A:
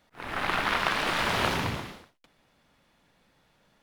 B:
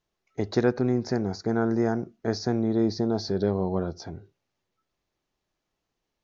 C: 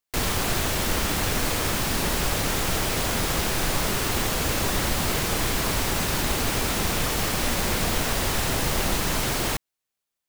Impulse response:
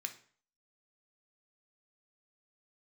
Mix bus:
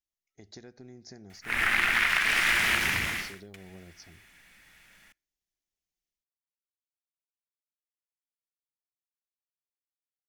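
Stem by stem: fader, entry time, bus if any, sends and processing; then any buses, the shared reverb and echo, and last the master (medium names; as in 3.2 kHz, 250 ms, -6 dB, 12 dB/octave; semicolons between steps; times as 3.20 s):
+2.0 dB, 1.30 s, send -18.5 dB, compression 6:1, threshold -31 dBFS, peak gain reduction 10 dB
-16.0 dB, 0.00 s, send -12 dB, high-order bell 1.6 kHz -11 dB; compression 6:1, threshold -24 dBFS, peak gain reduction 8 dB
mute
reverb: on, RT60 0.50 s, pre-delay 3 ms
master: treble shelf 2.6 kHz +8.5 dB; level rider gain up to 4.5 dB; ten-band graphic EQ 125 Hz -7 dB, 250 Hz -5 dB, 500 Hz -10 dB, 1 kHz -8 dB, 2 kHz +9 dB, 4 kHz -8 dB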